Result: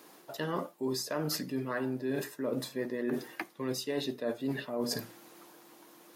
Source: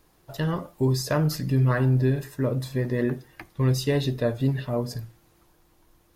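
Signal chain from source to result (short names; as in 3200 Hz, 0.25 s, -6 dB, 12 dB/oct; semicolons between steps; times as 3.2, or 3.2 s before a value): HPF 220 Hz 24 dB/oct; reverse; compressor 10:1, threshold -39 dBFS, peak gain reduction 19.5 dB; reverse; gain +8.5 dB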